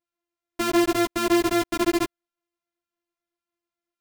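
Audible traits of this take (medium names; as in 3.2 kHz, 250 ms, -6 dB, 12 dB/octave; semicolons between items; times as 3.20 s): a buzz of ramps at a fixed pitch in blocks of 128 samples; a shimmering, thickened sound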